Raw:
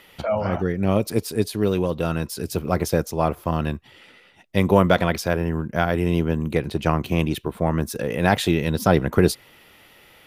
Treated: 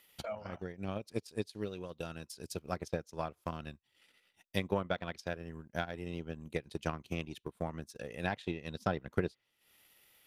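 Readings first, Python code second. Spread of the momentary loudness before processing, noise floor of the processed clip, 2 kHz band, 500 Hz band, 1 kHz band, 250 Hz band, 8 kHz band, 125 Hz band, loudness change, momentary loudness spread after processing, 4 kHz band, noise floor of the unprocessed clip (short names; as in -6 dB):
7 LU, -78 dBFS, -14.5 dB, -17.0 dB, -16.5 dB, -18.5 dB, -18.5 dB, -19.0 dB, -17.5 dB, 9 LU, -15.0 dB, -52 dBFS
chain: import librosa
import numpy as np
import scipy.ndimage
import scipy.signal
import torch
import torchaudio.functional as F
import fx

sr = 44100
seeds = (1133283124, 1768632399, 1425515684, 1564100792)

y = scipy.signal.lfilter([1.0, -0.8], [1.0], x)
y = fx.env_lowpass_down(y, sr, base_hz=2900.0, full_db=-26.5)
y = fx.transient(y, sr, attack_db=9, sustain_db=-11)
y = F.gain(torch.from_numpy(y), -8.0).numpy()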